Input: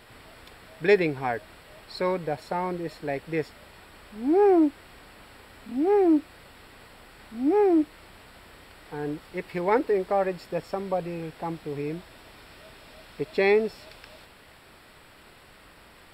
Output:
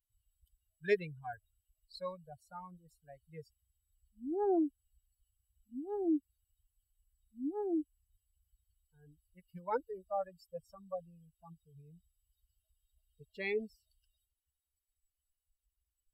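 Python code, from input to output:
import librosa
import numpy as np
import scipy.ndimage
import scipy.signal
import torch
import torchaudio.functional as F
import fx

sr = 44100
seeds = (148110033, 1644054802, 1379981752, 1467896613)

y = fx.bin_expand(x, sr, power=3.0)
y = y * 10.0 ** (-8.0 / 20.0)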